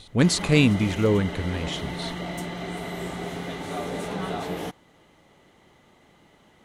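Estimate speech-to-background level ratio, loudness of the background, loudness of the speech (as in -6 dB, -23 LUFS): 10.0 dB, -32.5 LUFS, -22.5 LUFS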